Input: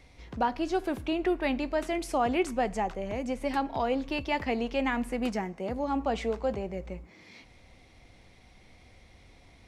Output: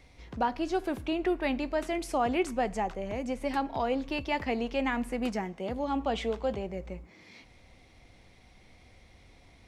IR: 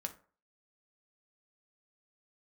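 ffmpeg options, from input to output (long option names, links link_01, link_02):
-filter_complex "[0:a]asettb=1/sr,asplit=3[link_01][link_02][link_03];[link_01]atrim=end=5.444[link_04];[link_02]atrim=start=5.44:end=6.67,asetpts=PTS-STARTPTS,afade=type=in:duration=0.004:curve=qsin,afade=type=out:start_time=1.226:duration=0.004:curve=qsin,equalizer=frequency=3300:width_type=o:width=0.37:gain=8[link_05];[link_03]atrim=start=6.666[link_06];[link_04][link_05]acrossfade=duration=0.004:curve1=hsin:curve2=qsin[link_07];[link_07][link_06]acrossfade=duration=0.004:curve1=qsin:curve2=hsin,volume=-1dB"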